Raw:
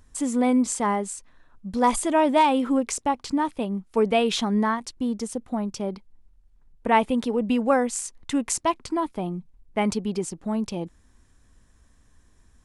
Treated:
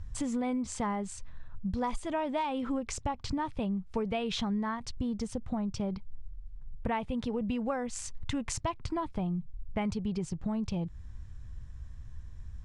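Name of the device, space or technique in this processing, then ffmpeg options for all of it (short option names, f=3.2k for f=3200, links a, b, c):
jukebox: -af "lowpass=5.6k,lowshelf=f=180:t=q:w=1.5:g=14,acompressor=threshold=-30dB:ratio=6"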